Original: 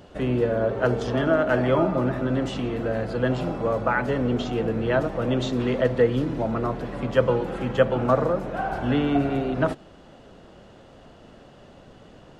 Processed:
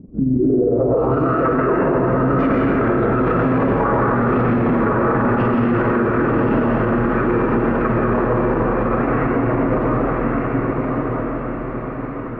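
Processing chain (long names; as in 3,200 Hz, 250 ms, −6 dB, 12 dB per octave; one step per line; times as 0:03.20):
source passing by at 0:03.13, 12 m/s, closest 10 metres
in parallel at −0.5 dB: downward compressor 6 to 1, threshold −35 dBFS, peak gain reduction 15.5 dB
on the sum: amplitude modulation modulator 22 Hz, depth 45%
floating-point word with a short mantissa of 4 bits
comb and all-pass reverb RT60 2.1 s, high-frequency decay 0.9×, pre-delay 80 ms, DRR −3.5 dB
formants moved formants −4 semitones
low-pass filter sweep 240 Hz → 1,600 Hz, 0:00.31–0:01.38
on a send: feedback delay with all-pass diffusion 1,112 ms, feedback 52%, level −3.5 dB
on the sum: boost into a limiter +23 dB
level −8.5 dB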